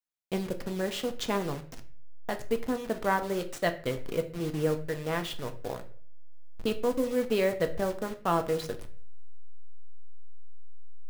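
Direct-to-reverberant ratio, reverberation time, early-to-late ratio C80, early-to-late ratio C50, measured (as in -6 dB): 6.0 dB, 0.45 s, 18.0 dB, 14.0 dB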